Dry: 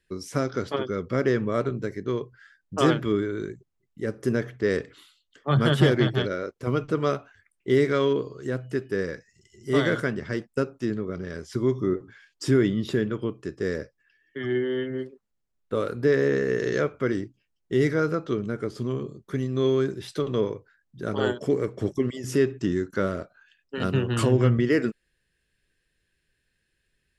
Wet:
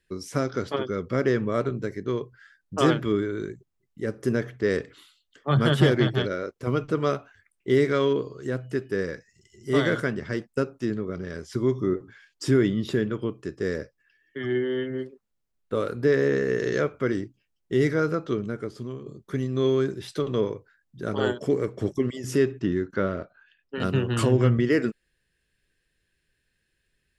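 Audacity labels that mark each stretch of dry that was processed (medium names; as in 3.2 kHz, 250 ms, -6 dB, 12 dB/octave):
18.360000	19.060000	fade out, to -10 dB
22.590000	23.800000	low-pass 3.6 kHz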